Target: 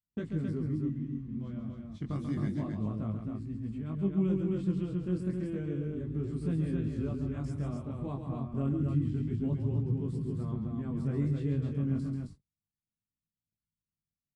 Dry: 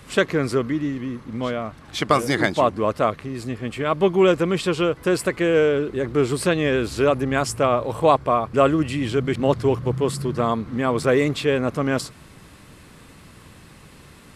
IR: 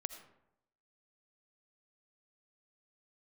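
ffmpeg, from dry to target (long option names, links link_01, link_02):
-af "firequalizer=gain_entry='entry(200,0);entry(500,-23);entry(2400,-25)':delay=0.05:min_phase=1,aecho=1:1:137|265.3:0.447|0.631,agate=range=-45dB:threshold=-38dB:ratio=16:detection=peak,flanger=delay=18.5:depth=3.5:speed=0.3,volume=-3dB" -ar 22050 -c:a aac -b:a 48k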